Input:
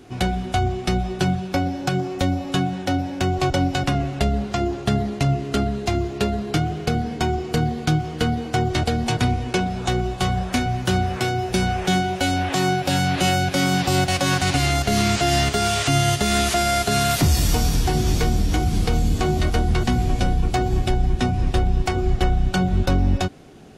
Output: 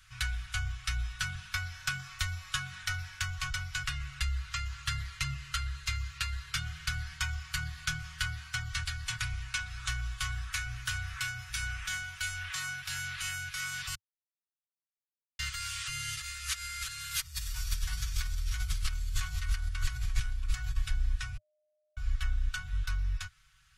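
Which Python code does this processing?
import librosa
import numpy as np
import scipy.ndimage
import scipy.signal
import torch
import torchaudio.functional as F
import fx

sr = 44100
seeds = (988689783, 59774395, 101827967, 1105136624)

y = fx.over_compress(x, sr, threshold_db=-23.0, ratio=-0.5, at=(16.17, 20.77))
y = fx.edit(y, sr, fx.silence(start_s=13.95, length_s=1.44),
    fx.bleep(start_s=21.37, length_s=0.6, hz=609.0, db=-21.0), tone=tone)
y = scipy.signal.sosfilt(scipy.signal.ellip(3, 1.0, 40, [100.0, 1300.0], 'bandstop', fs=sr, output='sos'), y)
y = y + 0.65 * np.pad(y, (int(5.3 * sr / 1000.0), 0))[:len(y)]
y = fx.rider(y, sr, range_db=10, speed_s=0.5)
y = y * librosa.db_to_amplitude(-8.0)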